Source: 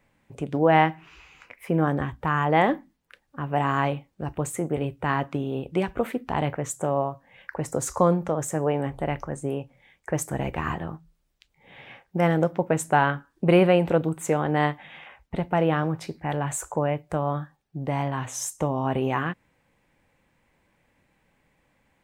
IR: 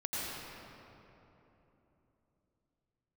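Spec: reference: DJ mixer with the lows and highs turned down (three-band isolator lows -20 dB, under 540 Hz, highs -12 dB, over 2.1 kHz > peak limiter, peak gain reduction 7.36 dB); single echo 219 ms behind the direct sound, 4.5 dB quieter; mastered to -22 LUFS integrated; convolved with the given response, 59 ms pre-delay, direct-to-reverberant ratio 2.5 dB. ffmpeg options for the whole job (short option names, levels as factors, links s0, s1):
-filter_complex "[0:a]aecho=1:1:219:0.596,asplit=2[s0][s1];[1:a]atrim=start_sample=2205,adelay=59[s2];[s1][s2]afir=irnorm=-1:irlink=0,volume=0.422[s3];[s0][s3]amix=inputs=2:normalize=0,acrossover=split=540 2100:gain=0.1 1 0.251[s4][s5][s6];[s4][s5][s6]amix=inputs=3:normalize=0,volume=2.37,alimiter=limit=0.355:level=0:latency=1"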